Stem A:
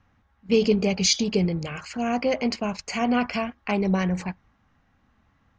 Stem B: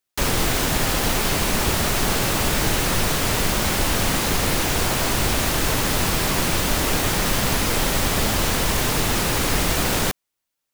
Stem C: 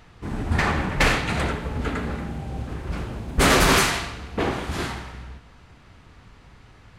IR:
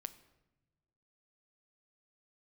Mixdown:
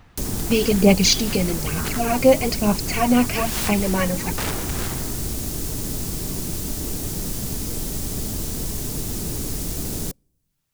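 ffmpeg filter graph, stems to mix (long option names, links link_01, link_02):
-filter_complex "[0:a]aphaser=in_gain=1:out_gain=1:delay=3.8:decay=0.65:speed=1.1:type=sinusoidal,volume=2dB,asplit=2[link_01][link_02];[1:a]bandreject=frequency=530:width=12,acrossover=split=460|5100[link_03][link_04][link_05];[link_03]acompressor=threshold=-29dB:ratio=4[link_06];[link_04]acompressor=threshold=-54dB:ratio=4[link_07];[link_05]acompressor=threshold=-33dB:ratio=4[link_08];[link_06][link_07][link_08]amix=inputs=3:normalize=0,volume=2.5dB,asplit=2[link_09][link_10];[link_10]volume=-21dB[link_11];[2:a]aeval=exprs='(mod(7.94*val(0)+1,2)-1)/7.94':channel_layout=same,volume=-3.5dB[link_12];[link_02]apad=whole_len=307897[link_13];[link_12][link_13]sidechaincompress=threshold=-30dB:ratio=8:attack=16:release=139[link_14];[3:a]atrim=start_sample=2205[link_15];[link_11][link_15]afir=irnorm=-1:irlink=0[link_16];[link_01][link_09][link_14][link_16]amix=inputs=4:normalize=0"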